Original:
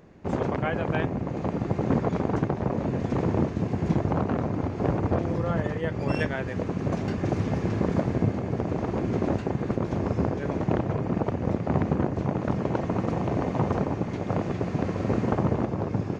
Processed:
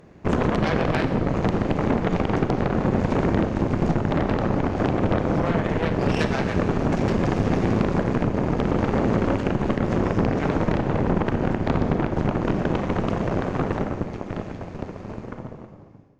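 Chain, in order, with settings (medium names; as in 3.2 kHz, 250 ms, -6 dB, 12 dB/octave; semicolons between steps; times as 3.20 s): fade out at the end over 5.23 s; dynamic bell 220 Hz, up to +4 dB, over -34 dBFS, Q 0.89; compression 6:1, threshold -23 dBFS, peak gain reduction 8.5 dB; Chebyshev shaper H 8 -12 dB, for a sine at -12.5 dBFS; Schroeder reverb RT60 1.5 s, combs from 30 ms, DRR 8 dB; trim +3 dB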